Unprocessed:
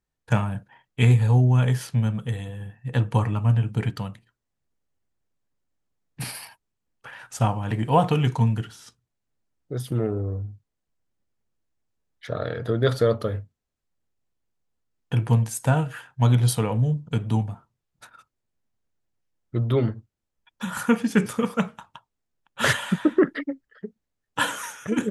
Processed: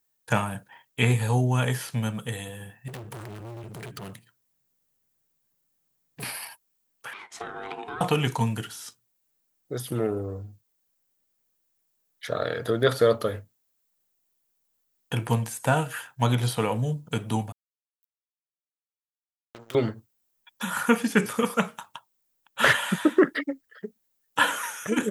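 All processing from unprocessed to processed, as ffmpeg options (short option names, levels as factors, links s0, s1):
-filter_complex "[0:a]asettb=1/sr,asplit=3[s0][s1][s2];[s0]atrim=end=2.884[s3];[s1]atrim=start=2.88:end=6.23,asetpts=PTS-STARTPTS,afade=t=in:d=0.004:c=qsin,afade=t=out:st=3.346:d=0.004:c=qsin,equalizer=f=140:t=o:w=1.2:g=9.5,acompressor=threshold=0.0501:ratio=3:attack=3.2:release=140:knee=1:detection=peak,asoftclip=type=hard:threshold=0.0224[s4];[s2]atrim=start=6.226[s5];[s3][s4]acrossfade=d=0.004:c1=hsin:c2=qsin[s6];[s6][s5]acrossfade=d=0.004:c1=qsin:c2=hsin,asettb=1/sr,asplit=3[s7][s8][s9];[s7]atrim=end=7.134[s10];[s8]atrim=start=7.13:end=8.01,asetpts=PTS-STARTPTS,afade=t=in:d=0.004:c=qsin,afade=t=out:st=0.876:d=0.004:c=qsin,highpass=160,lowpass=3600,aeval=exprs='val(0)*sin(2*PI*580*n/s)':c=same,acompressor=threshold=0.0251:ratio=16:attack=3.2:release=140:knee=1:detection=peak[s11];[s9]atrim=start=8.006[s12];[s10][s11]acrossfade=d=0.004:c1=hsin:c2=qsin[s13];[s13][s12]acrossfade=d=0.004:c1=qsin:c2=hsin,asettb=1/sr,asplit=3[s14][s15][s16];[s14]atrim=end=17.524[s17];[s15]atrim=start=17.52:end=19.75,asetpts=PTS-STARTPTS,afade=t=in:d=0.004:c=qsin,afade=t=out:st=2.226:d=0.004:c=qsin,lowshelf=f=440:g=-12,acrusher=bits=4:mix=0:aa=0.5,acompressor=threshold=0.0112:ratio=8:attack=3.2:release=140:knee=1:detection=peak[s18];[s16]atrim=start=19.746[s19];[s17][s18]acrossfade=d=0.004:c1=hsin:c2=qsin[s20];[s20][s19]acrossfade=d=0.004:c1=qsin:c2=hsin,aemphasis=mode=production:type=bsi,acrossover=split=3200[s21][s22];[s22]acompressor=threshold=0.0112:ratio=4:attack=1:release=60[s23];[s21][s23]amix=inputs=2:normalize=0,volume=1.33"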